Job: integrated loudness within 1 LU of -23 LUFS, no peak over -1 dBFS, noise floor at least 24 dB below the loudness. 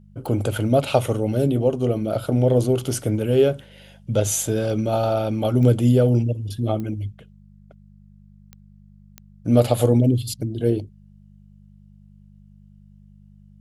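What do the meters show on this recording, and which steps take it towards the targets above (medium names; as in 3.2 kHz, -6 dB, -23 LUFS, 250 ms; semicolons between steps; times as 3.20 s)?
clicks found 5; hum 50 Hz; highest harmonic 200 Hz; hum level -48 dBFS; loudness -21.0 LUFS; peak level -3.5 dBFS; loudness target -23.0 LUFS
-> de-click; de-hum 50 Hz, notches 4; trim -2 dB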